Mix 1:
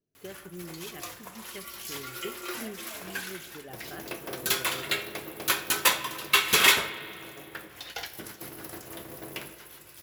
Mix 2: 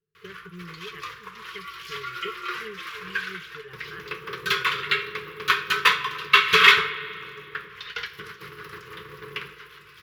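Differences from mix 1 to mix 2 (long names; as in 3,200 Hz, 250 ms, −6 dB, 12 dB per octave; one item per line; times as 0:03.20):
speech: send off
master: add drawn EQ curve 110 Hz 0 dB, 180 Hz +6 dB, 260 Hz −22 dB, 440 Hz +9 dB, 660 Hz −28 dB, 1,100 Hz +10 dB, 3,200 Hz +5 dB, 5,100 Hz −2 dB, 7,900 Hz −15 dB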